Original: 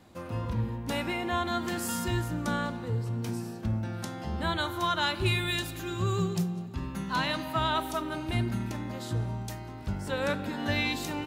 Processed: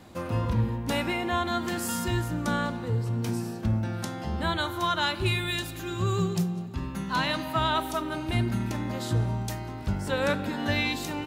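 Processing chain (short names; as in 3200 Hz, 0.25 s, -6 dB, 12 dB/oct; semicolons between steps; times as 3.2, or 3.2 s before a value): vocal rider 2 s; gain +2 dB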